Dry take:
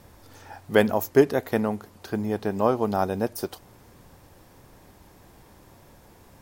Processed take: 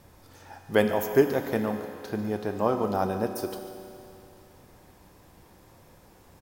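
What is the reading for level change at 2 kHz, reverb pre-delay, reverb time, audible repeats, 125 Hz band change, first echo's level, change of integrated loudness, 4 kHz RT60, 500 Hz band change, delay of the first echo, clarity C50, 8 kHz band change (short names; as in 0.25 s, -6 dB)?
-2.5 dB, 4 ms, 2.7 s, 1, -2.5 dB, -15.0 dB, -2.5 dB, 2.7 s, -2.5 dB, 0.145 s, 6.0 dB, -2.5 dB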